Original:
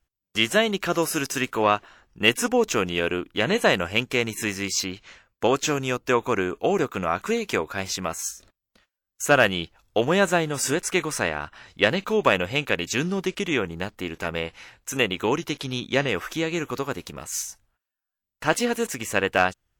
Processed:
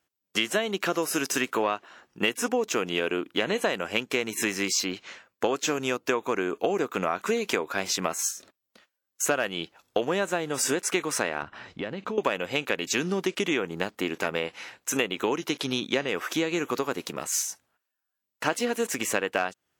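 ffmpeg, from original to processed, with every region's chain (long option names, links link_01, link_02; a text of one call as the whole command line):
ffmpeg -i in.wav -filter_complex "[0:a]asettb=1/sr,asplit=3[link_01][link_02][link_03];[link_01]atrim=end=11.424[link_04];[link_02]atrim=start=11.42:end=12.18,asetpts=PTS-STARTPTS,afade=type=in:duration=0.004:curve=qsin,afade=type=out:start_time=0.756:duration=0.004:curve=qsin,aemphasis=mode=reproduction:type=bsi,acompressor=threshold=-31dB:ratio=20:attack=3.2:release=140:knee=1:detection=peak[link_05];[link_03]atrim=start=12.176[link_06];[link_04][link_05]acrossfade=duration=0.004:curve1=hsin:curve2=qsin[link_07];[link_07][link_06]acrossfade=duration=0.004:curve1=qsin:curve2=hsin,highpass=250,lowshelf=frequency=410:gain=3.5,acompressor=threshold=-26dB:ratio=6,volume=3.5dB" out.wav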